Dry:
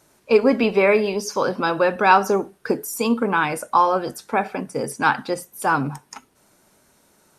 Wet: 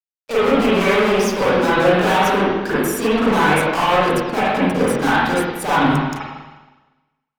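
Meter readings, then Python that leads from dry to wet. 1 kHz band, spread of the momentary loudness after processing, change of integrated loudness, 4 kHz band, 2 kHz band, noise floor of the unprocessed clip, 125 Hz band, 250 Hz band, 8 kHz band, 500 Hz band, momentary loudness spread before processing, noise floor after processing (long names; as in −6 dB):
+2.5 dB, 5 LU, +3.5 dB, +8.5 dB, +4.5 dB, −60 dBFS, +9.0 dB, +6.0 dB, +3.0 dB, +3.5 dB, 10 LU, −82 dBFS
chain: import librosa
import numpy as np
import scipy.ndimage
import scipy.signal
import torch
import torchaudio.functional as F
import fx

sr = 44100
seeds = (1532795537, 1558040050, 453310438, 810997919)

y = fx.fuzz(x, sr, gain_db=30.0, gate_db=-39.0)
y = fx.rev_spring(y, sr, rt60_s=1.2, pass_ms=(39, 46, 50), chirp_ms=80, drr_db=-10.0)
y = y * librosa.db_to_amplitude(-10.0)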